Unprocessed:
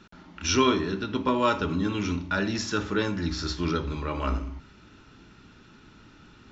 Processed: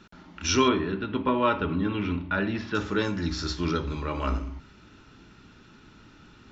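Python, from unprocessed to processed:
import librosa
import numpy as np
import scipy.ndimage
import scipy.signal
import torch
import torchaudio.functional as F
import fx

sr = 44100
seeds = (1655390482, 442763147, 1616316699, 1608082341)

y = fx.lowpass(x, sr, hz=3300.0, slope=24, at=(0.68, 2.75))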